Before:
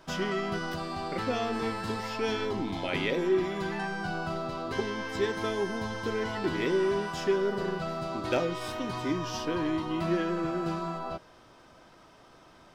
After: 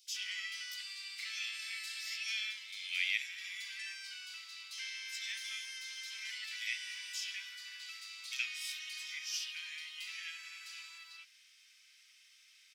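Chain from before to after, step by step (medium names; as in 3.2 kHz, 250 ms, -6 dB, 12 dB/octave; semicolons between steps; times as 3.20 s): elliptic high-pass 2.2 kHz, stop band 80 dB; bands offset in time highs, lows 70 ms, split 3.6 kHz; trim +4 dB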